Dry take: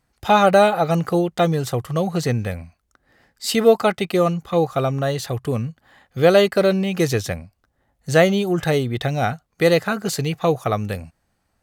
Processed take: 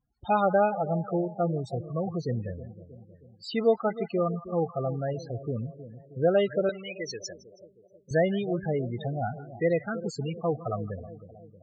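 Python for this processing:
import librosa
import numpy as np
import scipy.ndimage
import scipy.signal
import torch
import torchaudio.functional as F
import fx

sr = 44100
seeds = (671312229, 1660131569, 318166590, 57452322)

y = fx.echo_split(x, sr, split_hz=800.0, low_ms=316, high_ms=161, feedback_pct=52, wet_db=-13.5)
y = fx.spec_topn(y, sr, count=16)
y = fx.weighting(y, sr, curve='ITU-R 468', at=(6.69, 8.11))
y = y * librosa.db_to_amplitude(-9.0)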